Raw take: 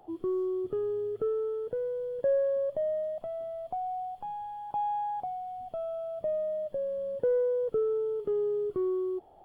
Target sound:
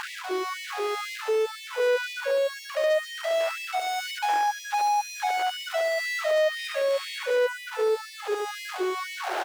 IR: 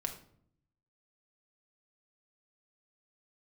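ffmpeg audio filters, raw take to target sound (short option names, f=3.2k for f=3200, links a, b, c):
-filter_complex "[0:a]asoftclip=type=tanh:threshold=-32.5dB,acrusher=bits=7:dc=4:mix=0:aa=0.000001,asettb=1/sr,asplit=3[a][b][c];[a]atrim=end=6.524[d];[b]atrim=start=6.52:end=7.27,asetpts=PTS-STARTPTS,afade=t=in:d=0.004:c=qsin,afade=t=out:st=0.746:d=0.004:c=qsin,equalizer=f=125:t=o:w=1:g=6,equalizer=f=250:t=o:w=1:g=11,equalizer=f=500:t=o:w=1:g=3,equalizer=f=1k:t=o:w=1:g=-7,equalizer=f=2k:t=o:w=1:g=12[e];[c]atrim=start=7.266[f];[d][e]acrossfade=d=0.004:c1=hsin:c2=qsin[g];[g][f]acrossfade=d=0.004:c1=qsin:c2=hsin,asplit=2[h][i];[i]highpass=f=720:p=1,volume=43dB,asoftclip=type=tanh:threshold=-18dB[j];[h][j]amix=inputs=2:normalize=0,lowpass=f=2.8k:p=1,volume=-6dB,aecho=1:1:71|142|213|284|355:0.668|0.274|0.112|0.0461|0.0189,alimiter=limit=-21dB:level=0:latency=1:release=385,afftfilt=real='re*gte(b*sr/1024,270*pow(1800/270,0.5+0.5*sin(2*PI*2*pts/sr)))':imag='im*gte(b*sr/1024,270*pow(1800/270,0.5+0.5*sin(2*PI*2*pts/sr)))':win_size=1024:overlap=0.75,volume=2dB"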